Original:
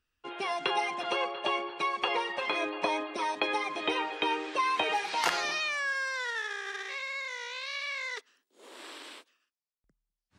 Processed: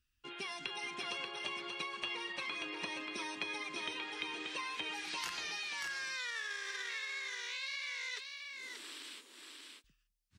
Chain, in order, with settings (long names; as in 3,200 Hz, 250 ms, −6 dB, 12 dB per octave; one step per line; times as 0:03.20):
guitar amp tone stack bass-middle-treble 6-0-2
downward compressor, threshold −54 dBFS, peak gain reduction 11.5 dB
on a send: single-tap delay 584 ms −4.5 dB
on the sum: level +15.5 dB